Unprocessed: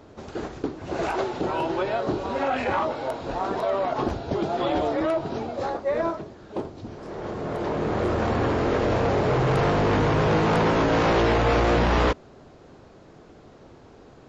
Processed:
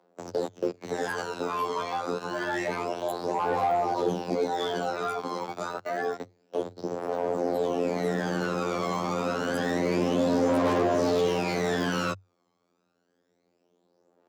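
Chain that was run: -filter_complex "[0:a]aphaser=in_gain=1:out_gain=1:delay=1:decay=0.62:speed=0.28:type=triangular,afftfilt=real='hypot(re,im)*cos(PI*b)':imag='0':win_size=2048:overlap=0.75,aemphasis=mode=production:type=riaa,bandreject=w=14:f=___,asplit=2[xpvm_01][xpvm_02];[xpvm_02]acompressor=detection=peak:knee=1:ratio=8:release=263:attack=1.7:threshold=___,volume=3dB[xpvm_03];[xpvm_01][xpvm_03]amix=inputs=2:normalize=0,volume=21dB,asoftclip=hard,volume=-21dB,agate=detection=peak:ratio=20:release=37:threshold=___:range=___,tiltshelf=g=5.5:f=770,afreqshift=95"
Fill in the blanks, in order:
6500, -34dB, -39dB, -27dB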